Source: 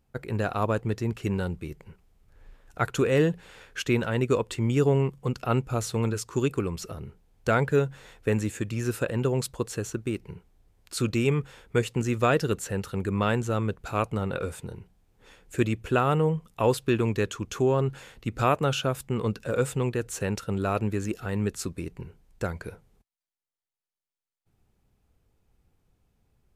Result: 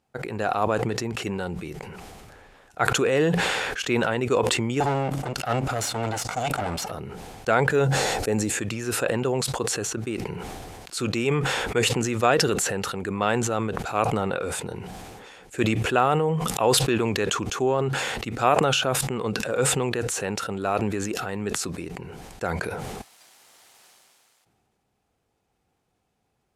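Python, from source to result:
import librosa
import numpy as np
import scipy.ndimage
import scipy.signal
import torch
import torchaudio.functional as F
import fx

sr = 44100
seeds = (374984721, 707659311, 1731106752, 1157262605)

y = fx.lower_of_two(x, sr, delay_ms=1.4, at=(4.8, 6.91))
y = fx.highpass(y, sr, hz=310.0, slope=6)
y = fx.spec_box(y, sr, start_s=7.87, length_s=0.63, low_hz=900.0, high_hz=3900.0, gain_db=-7)
y = scipy.signal.sosfilt(scipy.signal.butter(2, 11000.0, 'lowpass', fs=sr, output='sos'), y)
y = fx.peak_eq(y, sr, hz=760.0, db=6.0, octaves=0.31)
y = fx.sustainer(y, sr, db_per_s=21.0)
y = y * librosa.db_to_amplitude(2.0)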